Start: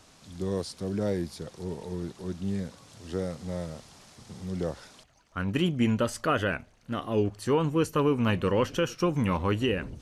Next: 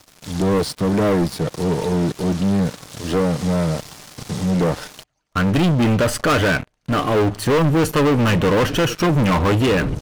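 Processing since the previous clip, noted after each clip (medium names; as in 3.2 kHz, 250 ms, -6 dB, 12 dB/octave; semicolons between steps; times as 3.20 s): dynamic bell 6.6 kHz, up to -8 dB, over -53 dBFS, Q 0.73; comb 6.6 ms, depth 32%; waveshaping leveller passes 5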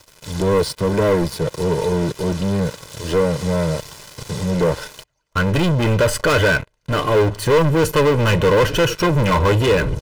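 comb 2 ms, depth 55%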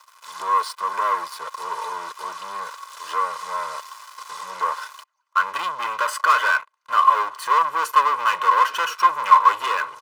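resonant high-pass 1.1 kHz, resonance Q 8.7; trim -7 dB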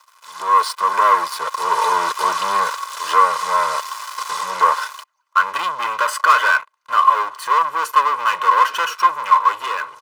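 level rider gain up to 16 dB; trim -1 dB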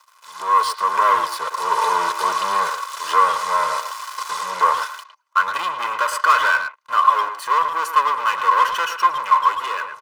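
speakerphone echo 110 ms, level -8 dB; trim -2 dB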